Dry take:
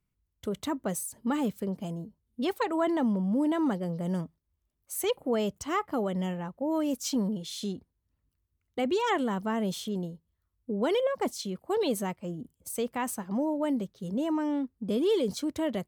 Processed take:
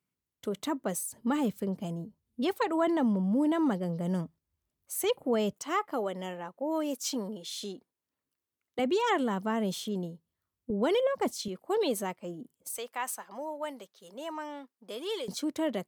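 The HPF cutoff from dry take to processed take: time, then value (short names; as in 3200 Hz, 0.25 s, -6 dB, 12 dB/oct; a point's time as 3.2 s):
190 Hz
from 1.04 s 80 Hz
from 5.53 s 340 Hz
from 8.79 s 150 Hz
from 10.7 s 67 Hz
from 11.48 s 250 Hz
from 12.78 s 740 Hz
from 15.28 s 210 Hz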